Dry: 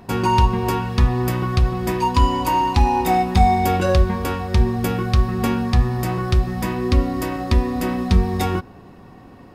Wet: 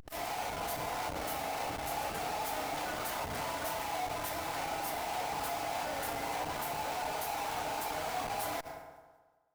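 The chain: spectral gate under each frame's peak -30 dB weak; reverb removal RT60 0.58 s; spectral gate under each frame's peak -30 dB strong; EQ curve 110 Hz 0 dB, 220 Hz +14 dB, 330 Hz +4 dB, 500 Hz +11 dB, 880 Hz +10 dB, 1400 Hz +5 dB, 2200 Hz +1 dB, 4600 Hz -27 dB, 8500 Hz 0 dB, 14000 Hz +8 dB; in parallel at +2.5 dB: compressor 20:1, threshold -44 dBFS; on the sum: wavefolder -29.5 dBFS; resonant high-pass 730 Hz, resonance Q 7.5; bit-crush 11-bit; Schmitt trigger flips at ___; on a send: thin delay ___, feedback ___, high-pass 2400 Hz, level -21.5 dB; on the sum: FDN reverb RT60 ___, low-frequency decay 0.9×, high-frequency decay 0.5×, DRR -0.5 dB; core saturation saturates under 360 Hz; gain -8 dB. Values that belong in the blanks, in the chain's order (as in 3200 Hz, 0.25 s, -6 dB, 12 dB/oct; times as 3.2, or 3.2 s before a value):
-43 dBFS, 0.185 s, 37%, 1.4 s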